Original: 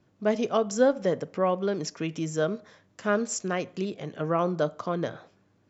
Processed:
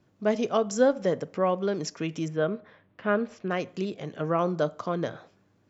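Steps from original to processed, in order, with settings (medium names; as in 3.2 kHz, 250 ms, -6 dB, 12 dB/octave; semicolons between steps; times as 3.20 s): 2.28–3.51 s: low-pass 3.2 kHz 24 dB/octave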